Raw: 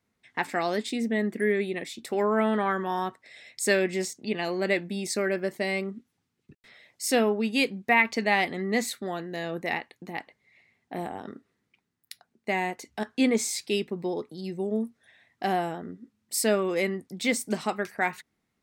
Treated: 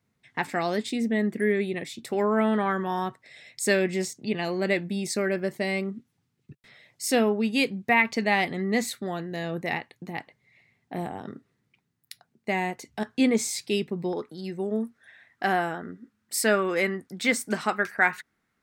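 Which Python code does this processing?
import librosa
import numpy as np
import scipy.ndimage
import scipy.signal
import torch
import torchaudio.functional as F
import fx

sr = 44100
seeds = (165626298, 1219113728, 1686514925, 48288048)

y = fx.peak_eq(x, sr, hz=fx.steps((0.0, 130.0), (14.13, 1500.0)), db=10.0, octaves=0.81)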